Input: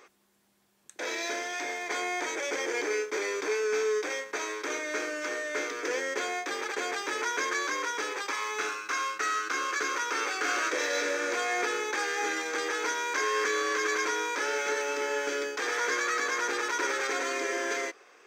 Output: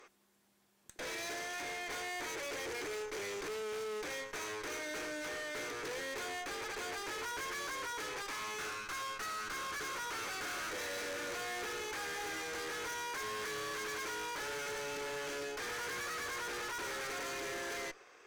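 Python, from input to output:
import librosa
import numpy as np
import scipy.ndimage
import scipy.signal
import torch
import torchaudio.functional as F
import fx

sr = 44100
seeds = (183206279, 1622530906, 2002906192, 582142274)

y = fx.tube_stage(x, sr, drive_db=40.0, bias=0.7)
y = F.gain(torch.from_numpy(y), 1.0).numpy()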